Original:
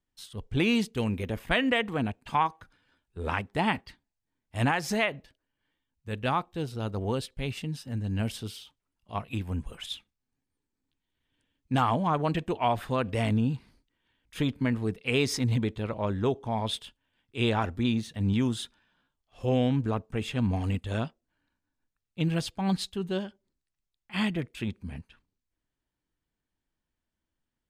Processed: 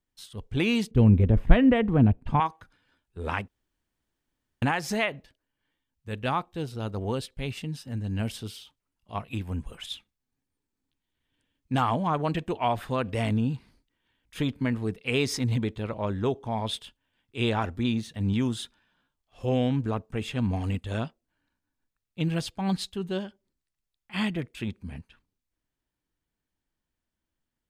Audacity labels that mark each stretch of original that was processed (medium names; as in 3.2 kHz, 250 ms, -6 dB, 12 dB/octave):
0.910000	2.400000	tilt EQ -4.5 dB/octave
3.480000	4.620000	room tone